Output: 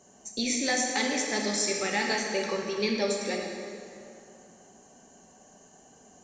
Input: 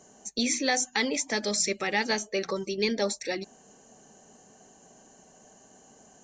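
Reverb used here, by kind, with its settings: plate-style reverb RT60 2.6 s, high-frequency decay 0.7×, DRR -0.5 dB; trim -3 dB

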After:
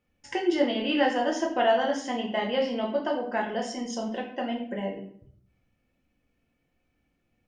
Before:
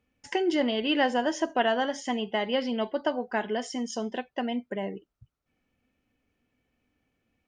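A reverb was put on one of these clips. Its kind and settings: simulated room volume 89 m³, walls mixed, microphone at 0.84 m; trim -3 dB

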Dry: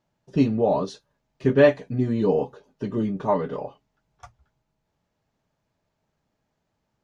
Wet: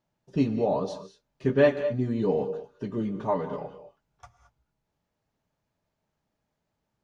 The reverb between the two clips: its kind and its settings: gated-style reverb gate 240 ms rising, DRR 10.5 dB; trim -4.5 dB

